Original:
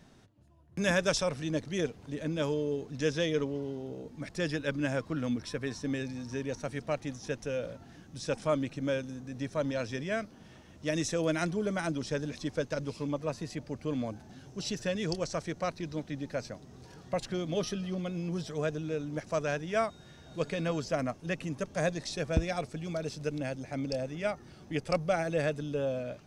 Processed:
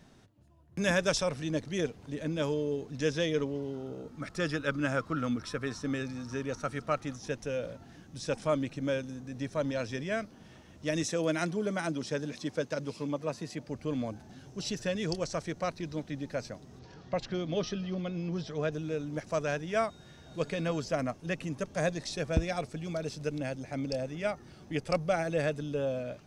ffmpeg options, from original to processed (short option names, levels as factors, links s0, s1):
-filter_complex "[0:a]asettb=1/sr,asplit=3[s0][s1][s2];[s0]atrim=end=3.734[s3];[s1]atrim=start=3.73:end=7.16,asetpts=PTS-STARTPTS,afade=t=in:d=0.004:c=qsin,afade=t=out:st=3.426:d=0.004:c=qsin,equalizer=f=1300:t=o:w=0.27:g=14[s4];[s2]atrim=start=7.156[s5];[s3][s4]acrossfade=d=0.004:c1=hsin:c2=qsin[s6];[s6][s5]acrossfade=d=0.004:c1=qsin:c2=hsin,asettb=1/sr,asplit=3[s7][s8][s9];[s7]atrim=end=11.034[s10];[s8]atrim=start=11.03:end=13.69,asetpts=PTS-STARTPTS,afade=t=in:d=0.004:c=qsin,afade=t=out:st=2.656:d=0.004:c=qsin,highpass=130[s11];[s9]atrim=start=13.686[s12];[s10][s11]acrossfade=d=0.004:c1=hsin:c2=qsin[s13];[s13][s12]acrossfade=d=0.004:c1=qsin:c2=hsin,asettb=1/sr,asplit=3[s14][s15][s16];[s14]atrim=end=16.794[s17];[s15]atrim=start=16.79:end=18.72,asetpts=PTS-STARTPTS,afade=t=in:d=0.004:c=qsin,afade=t=out:st=1.926:d=0.004:c=qsin,lowpass=f=5700:w=0.5412,lowpass=f=5700:w=1.3066[s18];[s16]atrim=start=18.716[s19];[s17][s18]acrossfade=d=0.004:c1=hsin:c2=qsin[s20];[s20][s19]acrossfade=d=0.004:c1=qsin:c2=hsin"